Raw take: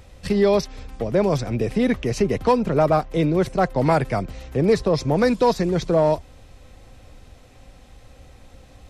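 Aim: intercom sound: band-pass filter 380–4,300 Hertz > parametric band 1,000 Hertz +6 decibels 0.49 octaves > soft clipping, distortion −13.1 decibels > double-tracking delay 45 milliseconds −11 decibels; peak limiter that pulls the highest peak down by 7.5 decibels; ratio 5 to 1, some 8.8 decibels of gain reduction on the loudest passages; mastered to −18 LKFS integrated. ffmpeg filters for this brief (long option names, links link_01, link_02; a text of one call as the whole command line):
ffmpeg -i in.wav -filter_complex "[0:a]acompressor=threshold=-23dB:ratio=5,alimiter=limit=-21dB:level=0:latency=1,highpass=380,lowpass=4300,equalizer=frequency=1000:width_type=o:width=0.49:gain=6,asoftclip=threshold=-27dB,asplit=2[link_01][link_02];[link_02]adelay=45,volume=-11dB[link_03];[link_01][link_03]amix=inputs=2:normalize=0,volume=17.5dB" out.wav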